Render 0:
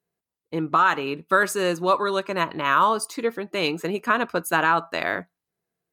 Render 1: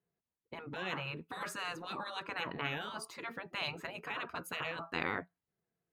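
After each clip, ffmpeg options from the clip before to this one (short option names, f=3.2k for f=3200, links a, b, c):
-af "bass=f=250:g=4,treble=f=4k:g=-12,afftfilt=real='re*lt(hypot(re,im),0.158)':imag='im*lt(hypot(re,im),0.158)':win_size=1024:overlap=0.75,volume=-5.5dB"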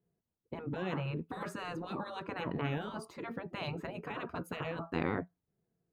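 -af "tiltshelf=f=820:g=8.5,volume=1dB"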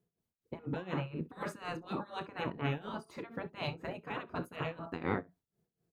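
-af "aecho=1:1:31|64:0.224|0.2,tremolo=f=4.1:d=0.85,volume=2.5dB"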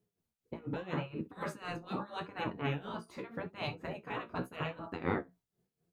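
-af "flanger=delay=9.4:depth=8:regen=34:speed=0.82:shape=sinusoidal,volume=4dB"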